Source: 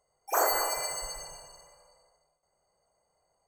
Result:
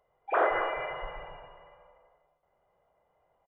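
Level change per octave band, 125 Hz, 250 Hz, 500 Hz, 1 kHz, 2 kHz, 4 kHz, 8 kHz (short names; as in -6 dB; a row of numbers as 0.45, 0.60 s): +3.0 dB, +4.0 dB, +3.0 dB, +0.5 dB, +3.5 dB, -11.0 dB, under -40 dB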